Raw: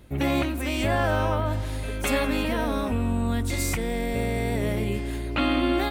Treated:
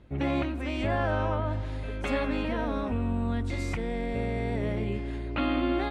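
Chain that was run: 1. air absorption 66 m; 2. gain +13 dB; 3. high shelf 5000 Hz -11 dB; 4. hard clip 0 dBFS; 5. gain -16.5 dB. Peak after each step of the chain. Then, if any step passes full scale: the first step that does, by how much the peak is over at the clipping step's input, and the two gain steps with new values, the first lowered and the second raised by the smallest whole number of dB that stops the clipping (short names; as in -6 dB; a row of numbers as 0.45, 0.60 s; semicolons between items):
-14.5, -1.5, -1.5, -1.5, -18.0 dBFS; no overload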